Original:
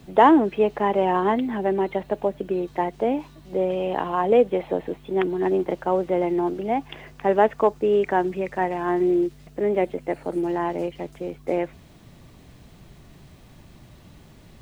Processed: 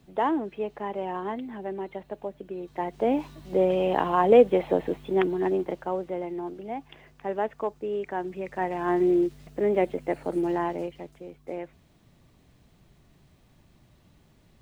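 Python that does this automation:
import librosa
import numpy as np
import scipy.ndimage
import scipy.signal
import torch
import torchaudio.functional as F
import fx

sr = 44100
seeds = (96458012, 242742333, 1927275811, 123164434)

y = fx.gain(x, sr, db=fx.line((2.56, -11.0), (3.2, 1.0), (5.0, 1.0), (6.27, -10.5), (8.11, -10.5), (8.92, -1.5), (10.56, -1.5), (11.24, -11.0)))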